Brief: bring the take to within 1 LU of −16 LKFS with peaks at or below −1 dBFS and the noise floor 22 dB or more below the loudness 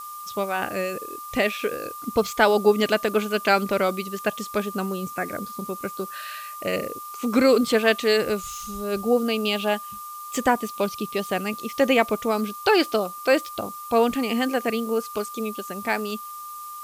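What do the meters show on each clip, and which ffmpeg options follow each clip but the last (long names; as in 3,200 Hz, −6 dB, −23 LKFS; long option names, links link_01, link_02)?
interfering tone 1,200 Hz; level of the tone −35 dBFS; background noise floor −37 dBFS; target noise floor −46 dBFS; integrated loudness −24.0 LKFS; sample peak −4.5 dBFS; target loudness −16.0 LKFS
→ -af "bandreject=frequency=1200:width=30"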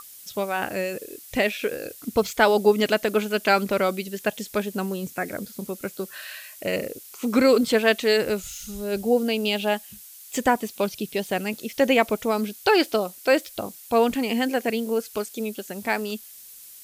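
interfering tone none found; background noise floor −45 dBFS; target noise floor −47 dBFS
→ -af "afftdn=noise_reduction=6:noise_floor=-45"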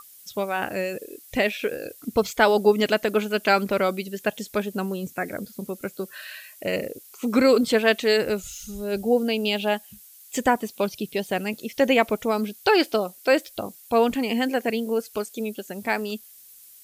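background noise floor −49 dBFS; integrated loudness −24.0 LKFS; sample peak −5.0 dBFS; target loudness −16.0 LKFS
→ -af "volume=8dB,alimiter=limit=-1dB:level=0:latency=1"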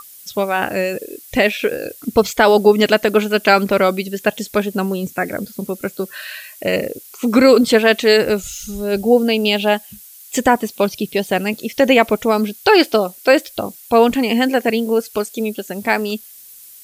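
integrated loudness −16.5 LKFS; sample peak −1.0 dBFS; background noise floor −41 dBFS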